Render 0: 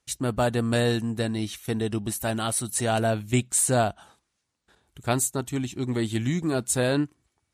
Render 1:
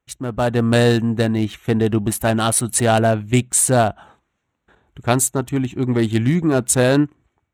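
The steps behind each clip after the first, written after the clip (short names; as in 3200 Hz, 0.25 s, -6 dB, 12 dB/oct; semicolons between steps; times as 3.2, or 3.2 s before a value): Wiener smoothing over 9 samples; AGC gain up to 10.5 dB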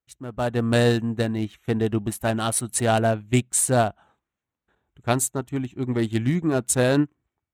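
upward expander 1.5:1, over -32 dBFS; gain -3.5 dB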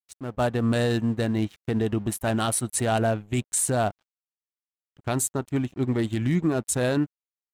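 crossover distortion -51 dBFS; limiter -16.5 dBFS, peak gain reduction 10 dB; gain +2 dB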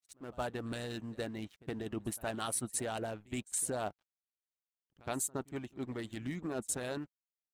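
reverse echo 68 ms -19 dB; harmonic-percussive split harmonic -11 dB; gain -8.5 dB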